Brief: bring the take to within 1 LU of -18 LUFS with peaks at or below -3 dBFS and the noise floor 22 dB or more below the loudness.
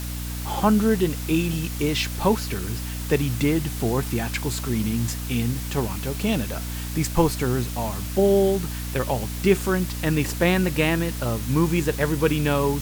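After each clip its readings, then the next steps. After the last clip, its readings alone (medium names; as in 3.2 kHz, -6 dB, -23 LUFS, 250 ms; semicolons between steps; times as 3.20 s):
hum 60 Hz; highest harmonic 300 Hz; hum level -28 dBFS; noise floor -30 dBFS; noise floor target -46 dBFS; loudness -23.5 LUFS; peak level -5.5 dBFS; loudness target -18.0 LUFS
-> hum notches 60/120/180/240/300 Hz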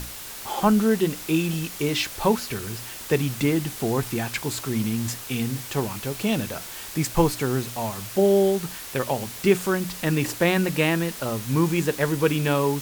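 hum not found; noise floor -38 dBFS; noise floor target -47 dBFS
-> noise reduction 9 dB, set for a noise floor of -38 dBFS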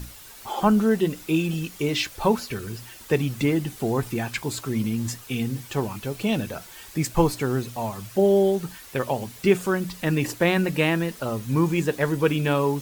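noise floor -45 dBFS; noise floor target -47 dBFS
-> noise reduction 6 dB, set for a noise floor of -45 dBFS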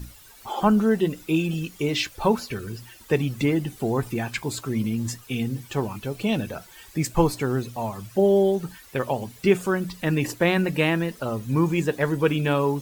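noise floor -49 dBFS; loudness -24.5 LUFS; peak level -7.0 dBFS; loudness target -18.0 LUFS
-> trim +6.5 dB; peak limiter -3 dBFS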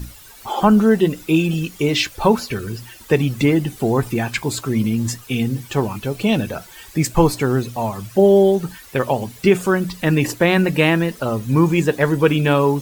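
loudness -18.5 LUFS; peak level -3.0 dBFS; noise floor -42 dBFS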